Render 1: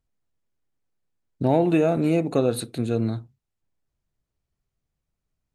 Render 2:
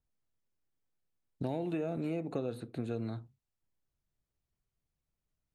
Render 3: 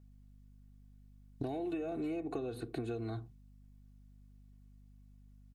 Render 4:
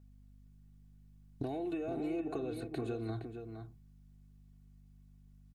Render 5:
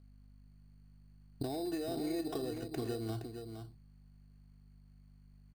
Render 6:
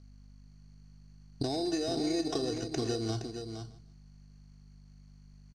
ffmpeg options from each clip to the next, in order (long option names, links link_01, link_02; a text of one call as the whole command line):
ffmpeg -i in.wav -filter_complex "[0:a]acrossover=split=510|2200[link_01][link_02][link_03];[link_01]acompressor=threshold=-29dB:ratio=4[link_04];[link_02]acompressor=threshold=-37dB:ratio=4[link_05];[link_03]acompressor=threshold=-51dB:ratio=4[link_06];[link_04][link_05][link_06]amix=inputs=3:normalize=0,adynamicequalizer=threshold=0.00178:dfrequency=4300:dqfactor=0.7:tfrequency=4300:tqfactor=0.7:attack=5:release=100:ratio=0.375:range=3:mode=cutabove:tftype=highshelf,volume=-6dB" out.wav
ffmpeg -i in.wav -af "aecho=1:1:2.7:0.84,acompressor=threshold=-40dB:ratio=6,aeval=exprs='val(0)+0.000794*(sin(2*PI*50*n/s)+sin(2*PI*2*50*n/s)/2+sin(2*PI*3*50*n/s)/3+sin(2*PI*4*50*n/s)/4+sin(2*PI*5*50*n/s)/5)':channel_layout=same,volume=4.5dB" out.wav
ffmpeg -i in.wav -filter_complex "[0:a]asplit=2[link_01][link_02];[link_02]adelay=466.5,volume=-7dB,highshelf=frequency=4000:gain=-10.5[link_03];[link_01][link_03]amix=inputs=2:normalize=0" out.wav
ffmpeg -i in.wav -af "acrusher=samples=10:mix=1:aa=0.000001" out.wav
ffmpeg -i in.wav -af "lowpass=frequency=6000:width_type=q:width=5.8,aecho=1:1:154|308:0.133|0.0333,volume=5dB" out.wav